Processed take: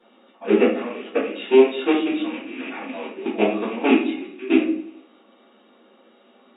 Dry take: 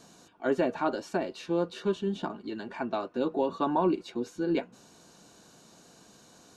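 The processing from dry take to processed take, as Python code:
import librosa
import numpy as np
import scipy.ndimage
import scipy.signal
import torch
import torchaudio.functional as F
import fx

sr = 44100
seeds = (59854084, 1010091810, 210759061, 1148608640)

p1 = fx.rattle_buzz(x, sr, strikes_db=-44.0, level_db=-28.0)
p2 = fx.dynamic_eq(p1, sr, hz=920.0, q=0.78, threshold_db=-38.0, ratio=4.0, max_db=-5)
p3 = fx.rider(p2, sr, range_db=3, speed_s=2.0)
p4 = p2 + (p3 * 10.0 ** (-2.0 / 20.0))
p5 = fx.leveller(p4, sr, passes=1)
p6 = fx.level_steps(p5, sr, step_db=20)
p7 = fx.pitch_keep_formants(p6, sr, semitones=-4.5)
p8 = fx.brickwall_bandpass(p7, sr, low_hz=200.0, high_hz=3800.0)
p9 = fx.doubler(p8, sr, ms=15.0, db=-12)
p10 = fx.echo_feedback(p9, sr, ms=88, feedback_pct=60, wet_db=-21)
y = fx.room_shoebox(p10, sr, seeds[0], volume_m3=59.0, walls='mixed', distance_m=1.6)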